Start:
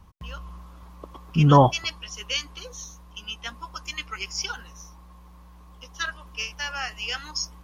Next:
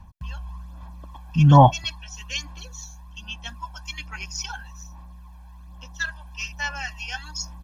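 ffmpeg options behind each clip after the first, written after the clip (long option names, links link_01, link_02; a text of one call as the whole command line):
ffmpeg -i in.wav -af "aecho=1:1:1.2:0.77,aphaser=in_gain=1:out_gain=1:delay=1.3:decay=0.48:speed=1.2:type=sinusoidal,volume=-4dB" out.wav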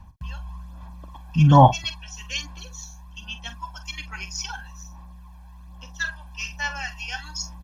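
ffmpeg -i in.wav -filter_complex "[0:a]asplit=2[link_01][link_02];[link_02]adelay=45,volume=-12dB[link_03];[link_01][link_03]amix=inputs=2:normalize=0" out.wav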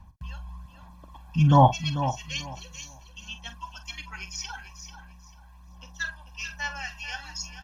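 ffmpeg -i in.wav -af "aecho=1:1:442|884|1326:0.282|0.062|0.0136,volume=-4dB" out.wav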